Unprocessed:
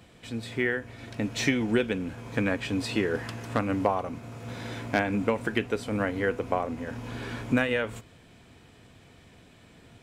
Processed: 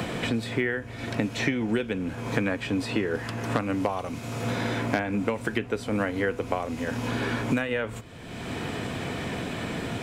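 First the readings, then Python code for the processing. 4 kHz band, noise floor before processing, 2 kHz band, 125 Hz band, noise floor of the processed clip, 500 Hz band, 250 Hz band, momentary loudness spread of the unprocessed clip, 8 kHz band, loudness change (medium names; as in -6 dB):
+2.0 dB, -55 dBFS, +1.0 dB, +3.0 dB, -40 dBFS, +0.5 dB, +1.5 dB, 11 LU, +1.0 dB, +0.5 dB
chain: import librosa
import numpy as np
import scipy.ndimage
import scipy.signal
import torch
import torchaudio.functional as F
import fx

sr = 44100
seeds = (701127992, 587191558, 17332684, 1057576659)

y = fx.band_squash(x, sr, depth_pct=100)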